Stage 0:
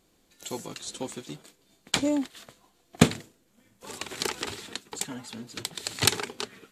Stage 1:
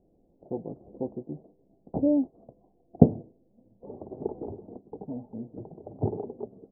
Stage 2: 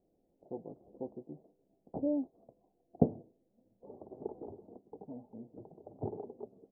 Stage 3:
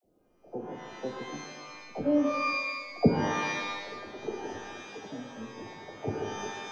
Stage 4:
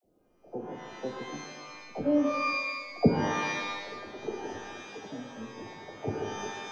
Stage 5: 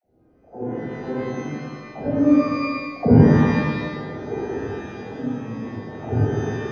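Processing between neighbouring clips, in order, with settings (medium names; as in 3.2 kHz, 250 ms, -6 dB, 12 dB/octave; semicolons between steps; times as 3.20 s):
steep low-pass 740 Hz 48 dB/octave; trim +3 dB
bass shelf 230 Hz -8 dB; trim -6.5 dB
phase dispersion lows, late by 50 ms, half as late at 430 Hz; pitch-shifted reverb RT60 1.3 s, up +12 st, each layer -2 dB, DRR 4 dB; trim +5 dB
no audible change
reverberation RT60 1.2 s, pre-delay 36 ms, DRR -3 dB; trim -7 dB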